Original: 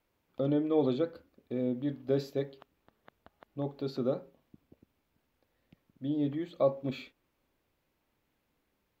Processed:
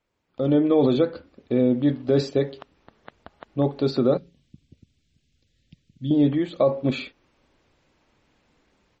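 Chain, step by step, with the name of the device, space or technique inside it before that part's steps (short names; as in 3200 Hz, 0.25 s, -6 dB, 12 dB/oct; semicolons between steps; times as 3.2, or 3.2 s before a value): 4.17–6.11 EQ curve 140 Hz 0 dB, 930 Hz -26 dB, 3400 Hz -1 dB; low-bitrate web radio (AGC gain up to 13.5 dB; limiter -9.5 dBFS, peak gain reduction 6 dB; MP3 32 kbps 44100 Hz)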